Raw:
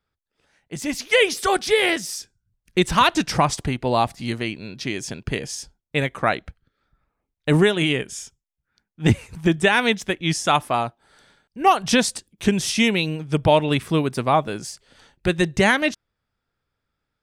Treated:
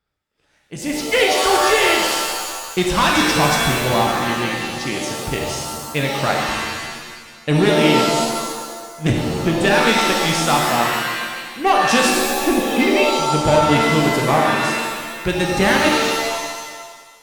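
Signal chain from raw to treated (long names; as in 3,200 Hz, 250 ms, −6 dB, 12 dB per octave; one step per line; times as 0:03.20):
0:12.44–0:13.19: three sine waves on the formant tracks
asymmetric clip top −15 dBFS
reverb with rising layers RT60 1.5 s, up +7 semitones, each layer −2 dB, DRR 0 dB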